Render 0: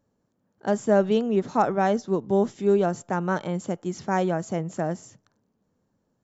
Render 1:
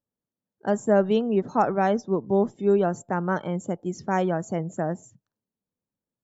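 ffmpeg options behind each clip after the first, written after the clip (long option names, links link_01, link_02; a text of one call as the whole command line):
ffmpeg -i in.wav -af "afftdn=noise_reduction=19:noise_floor=-45" out.wav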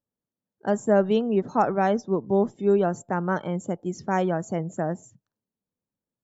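ffmpeg -i in.wav -af anull out.wav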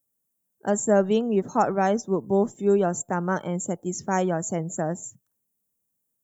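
ffmpeg -i in.wav -af "aexciter=amount=7.8:drive=4.5:freq=6500" out.wav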